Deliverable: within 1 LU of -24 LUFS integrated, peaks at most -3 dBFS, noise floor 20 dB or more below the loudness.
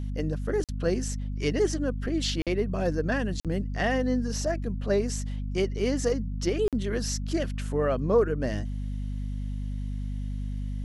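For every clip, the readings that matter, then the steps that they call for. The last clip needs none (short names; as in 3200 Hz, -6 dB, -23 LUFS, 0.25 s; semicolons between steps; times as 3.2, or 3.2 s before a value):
dropouts 4; longest dropout 47 ms; hum 50 Hz; harmonics up to 250 Hz; hum level -29 dBFS; loudness -29.0 LUFS; peak -11.0 dBFS; loudness target -24.0 LUFS
-> interpolate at 0.64/2.42/3.4/6.68, 47 ms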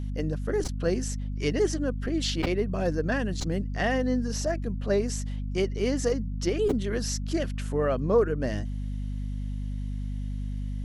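dropouts 0; hum 50 Hz; harmonics up to 250 Hz; hum level -29 dBFS
-> de-hum 50 Hz, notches 5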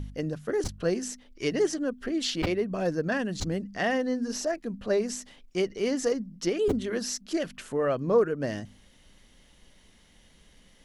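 hum none; loudness -29.5 LUFS; peak -12.0 dBFS; loudness target -24.0 LUFS
-> gain +5.5 dB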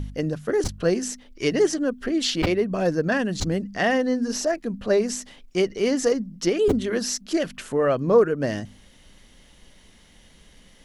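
loudness -24.0 LUFS; peak -6.5 dBFS; noise floor -53 dBFS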